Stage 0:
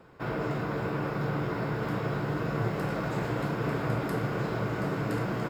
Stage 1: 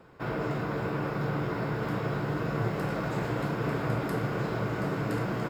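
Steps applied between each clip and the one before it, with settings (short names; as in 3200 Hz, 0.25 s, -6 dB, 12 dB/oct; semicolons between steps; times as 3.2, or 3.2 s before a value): nothing audible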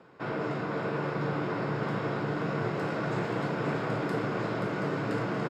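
BPF 150–6700 Hz; echo 0.528 s -6.5 dB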